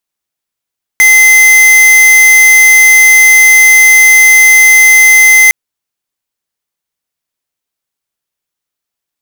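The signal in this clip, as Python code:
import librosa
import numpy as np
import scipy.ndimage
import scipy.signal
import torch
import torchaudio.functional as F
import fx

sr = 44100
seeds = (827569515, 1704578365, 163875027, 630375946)

y = fx.tone(sr, length_s=4.51, wave='square', hz=2060.0, level_db=-3.5)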